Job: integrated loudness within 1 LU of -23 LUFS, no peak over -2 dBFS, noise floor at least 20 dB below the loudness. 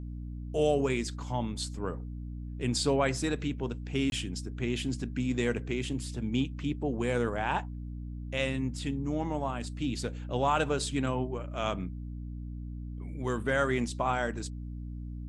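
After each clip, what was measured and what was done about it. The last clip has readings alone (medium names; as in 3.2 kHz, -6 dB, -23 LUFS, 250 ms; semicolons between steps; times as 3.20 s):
dropouts 1; longest dropout 21 ms; hum 60 Hz; highest harmonic 300 Hz; hum level -36 dBFS; loudness -32.5 LUFS; peak level -14.0 dBFS; loudness target -23.0 LUFS
-> interpolate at 4.10 s, 21 ms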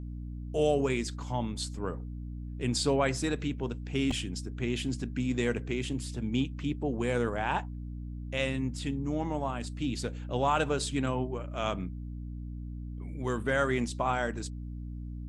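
dropouts 0; hum 60 Hz; highest harmonic 300 Hz; hum level -36 dBFS
-> hum notches 60/120/180/240/300 Hz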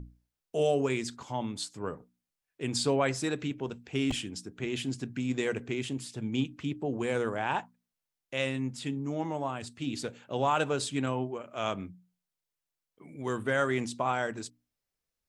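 hum not found; loudness -32.5 LUFS; peak level -14.5 dBFS; loudness target -23.0 LUFS
-> trim +9.5 dB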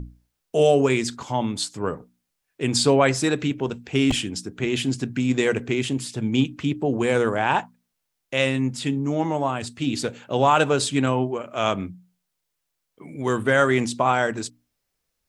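loudness -23.0 LUFS; peak level -5.0 dBFS; noise floor -79 dBFS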